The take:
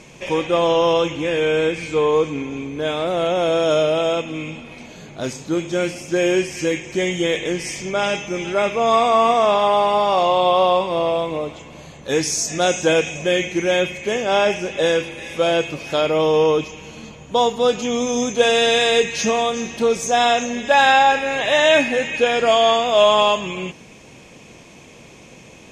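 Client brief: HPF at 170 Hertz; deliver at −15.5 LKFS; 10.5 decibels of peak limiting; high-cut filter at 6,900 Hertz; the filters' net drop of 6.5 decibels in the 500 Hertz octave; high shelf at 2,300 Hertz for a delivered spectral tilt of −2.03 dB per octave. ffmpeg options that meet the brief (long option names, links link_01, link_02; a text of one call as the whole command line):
ffmpeg -i in.wav -af "highpass=170,lowpass=6900,equalizer=frequency=500:width_type=o:gain=-8.5,highshelf=frequency=2300:gain=6,volume=7dB,alimiter=limit=-5.5dB:level=0:latency=1" out.wav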